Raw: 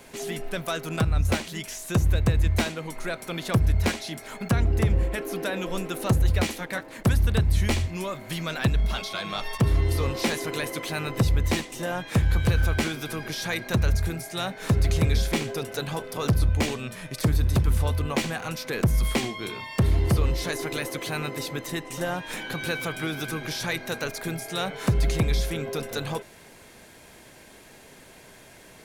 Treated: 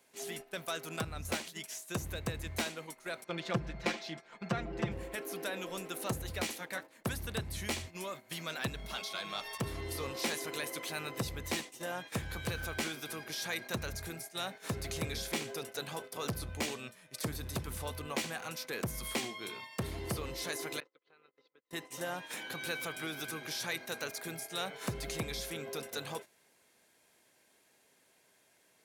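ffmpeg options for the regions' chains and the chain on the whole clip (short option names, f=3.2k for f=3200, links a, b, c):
-filter_complex "[0:a]asettb=1/sr,asplit=3[a][b][c];[a]atrim=end=3.244[d];[b]atrim=start=3.24:end=4.92,asetpts=PTS-STARTPTS,afade=t=in:d=0.004:c=qsin,afade=t=out:st=1.676:d=0.004:c=qsin,equalizer=f=11k:t=o:w=0.38:g=-13,aecho=1:1:5.8:0.97,atrim=end_sample=74088,adynamicsmooth=sensitivity=1.5:basefreq=3.9k[e];[c]atrim=start=4.916[f];[d][e]acrossfade=d=0.004:c1=hsin:c2=qsin[g];[g][f]acrossfade=d=0.004:c1=qsin:c2=hsin,asettb=1/sr,asplit=3[h][i][j];[h]atrim=end=20.804[k];[i]atrim=start=20.8:end=21.71,asetpts=PTS-STARTPTS,afade=t=in:d=0.004:c=qsin,afade=t=out:st=0.906:d=0.004:c=qsin,agate=range=-35dB:threshold=-30dB:ratio=16:release=100:detection=peak,acompressor=threshold=-42dB:ratio=8:attack=3.2:release=140:knee=1:detection=peak,highpass=210,equalizer=f=460:t=q:w=4:g=8,equalizer=f=650:t=q:w=4:g=-3,equalizer=f=1.3k:t=q:w=4:g=7,lowpass=f=4.2k:w=0.5412,lowpass=f=4.2k:w=1.3066[l];[j]atrim=start=21.706[m];[k][l]acrossfade=d=0.004:c1=hsin:c2=qsin[n];[n][m]acrossfade=d=0.004:c1=qsin:c2=hsin,highpass=f=300:p=1,agate=range=-11dB:threshold=-37dB:ratio=16:detection=peak,highshelf=f=4.6k:g=5,volume=-8.5dB"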